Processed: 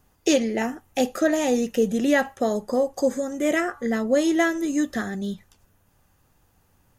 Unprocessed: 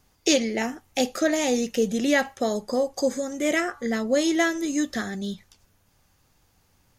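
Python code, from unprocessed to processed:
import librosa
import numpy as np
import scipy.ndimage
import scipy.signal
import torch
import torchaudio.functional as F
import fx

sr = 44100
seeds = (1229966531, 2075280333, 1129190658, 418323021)

y = fx.peak_eq(x, sr, hz=4700.0, db=-8.5, octaves=1.3)
y = fx.notch(y, sr, hz=2200.0, q=12.0)
y = F.gain(torch.from_numpy(y), 2.0).numpy()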